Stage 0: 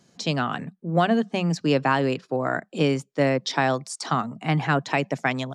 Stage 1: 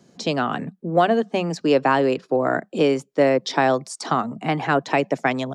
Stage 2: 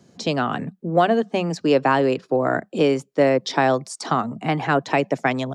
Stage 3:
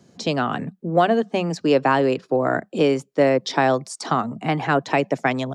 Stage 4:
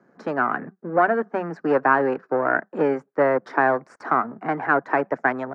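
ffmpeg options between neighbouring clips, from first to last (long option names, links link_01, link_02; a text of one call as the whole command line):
ffmpeg -i in.wav -filter_complex "[0:a]equalizer=frequency=340:width_type=o:width=2.6:gain=8,acrossover=split=340|4300[link_01][link_02][link_03];[link_01]acompressor=threshold=-28dB:ratio=6[link_04];[link_04][link_02][link_03]amix=inputs=3:normalize=0" out.wav
ffmpeg -i in.wav -af "equalizer=frequency=89:width=2:gain=9.5" out.wav
ffmpeg -i in.wav -af anull out.wav
ffmpeg -i in.wav -af "aeval=exprs='if(lt(val(0),0),0.447*val(0),val(0))':channel_layout=same,highpass=240,lowpass=4800,highshelf=frequency=2300:width_type=q:width=3:gain=-13.5" out.wav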